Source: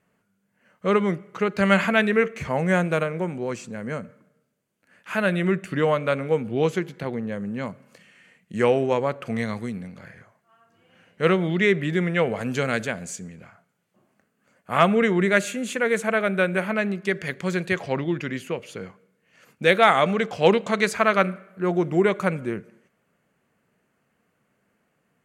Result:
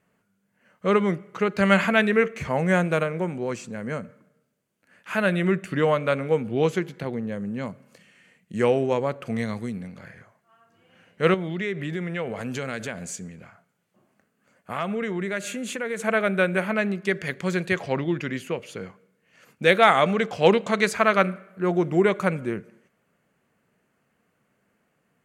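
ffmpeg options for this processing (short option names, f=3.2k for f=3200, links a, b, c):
-filter_complex "[0:a]asettb=1/sr,asplit=3[a][b][c];[a]atrim=end=7.024[d];[b]atrim=start=7.02:end=9.81,asetpts=PTS-STARTPTS,afade=t=in:d=0.004:c=qsin,afade=t=out:st=2.786:d=0.004:c=qsin,equalizer=f=1.5k:w=0.47:g=-3[e];[c]atrim=start=9.806[f];[d][e]acrossfade=d=0.004:c1=hsin:c2=qsin[g];[g][f]acrossfade=d=0.004:c1=qsin:c2=hsin,asettb=1/sr,asplit=3[h][i][j];[h]atrim=end=11.344[k];[i]atrim=start=11.34:end=16,asetpts=PTS-STARTPTS,afade=t=in:d=0.004:c=qsin,afade=t=out:st=4.656:d=0.004:c=qsin,acompressor=threshold=-28dB:ratio=2.5:attack=3.2:release=140:knee=1:detection=peak[l];[j]atrim=start=15.996[m];[k][l]acrossfade=d=0.004:c1=hsin:c2=qsin[n];[n][m]acrossfade=d=0.004:c1=qsin:c2=hsin"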